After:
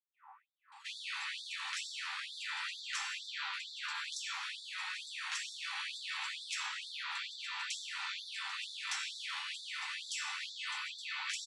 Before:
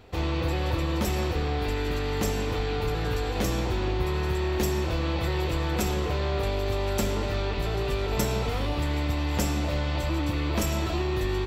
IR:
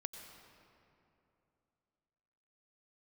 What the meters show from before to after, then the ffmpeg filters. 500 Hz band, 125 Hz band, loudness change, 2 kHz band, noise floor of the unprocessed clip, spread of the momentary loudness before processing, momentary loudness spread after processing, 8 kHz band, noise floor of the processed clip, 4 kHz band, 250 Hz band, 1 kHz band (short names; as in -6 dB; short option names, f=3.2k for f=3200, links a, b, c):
under -40 dB, under -40 dB, -11.5 dB, -3.5 dB, -29 dBFS, 2 LU, 2 LU, -6.5 dB, -62 dBFS, -2.5 dB, under -40 dB, -13.0 dB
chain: -filter_complex "[0:a]afftfilt=real='re*lt(hypot(re,im),0.0708)':imag='im*lt(hypot(re,im),0.0708)':win_size=1024:overlap=0.75,aemphasis=mode=reproduction:type=50kf,afftfilt=real='re*lt(hypot(re,im),0.0501)':imag='im*lt(hypot(re,im),0.0501)':win_size=1024:overlap=0.75,highshelf=f=5.8k:g=2,aeval=exprs='val(0)+0.000501*(sin(2*PI*50*n/s)+sin(2*PI*2*50*n/s)/2+sin(2*PI*3*50*n/s)/3+sin(2*PI*4*50*n/s)/4+sin(2*PI*5*50*n/s)/5)':c=same,acrossover=split=880|1700[a][b][c];[a]acrusher=samples=10:mix=1:aa=0.000001:lfo=1:lforange=16:lforate=0.26[d];[d][b][c]amix=inputs=3:normalize=0,asplit=2[e][f];[f]adelay=13,volume=-13.5dB[g];[e][g]amix=inputs=2:normalize=0,acrossover=split=820[h][i];[i]adelay=720[j];[h][j]amix=inputs=2:normalize=0,aresample=22050,aresample=44100,afftfilt=real='re*gte(b*sr/1024,750*pow(3500/750,0.5+0.5*sin(2*PI*2.2*pts/sr)))':imag='im*gte(b*sr/1024,750*pow(3500/750,0.5+0.5*sin(2*PI*2.2*pts/sr)))':win_size=1024:overlap=0.75,volume=1dB"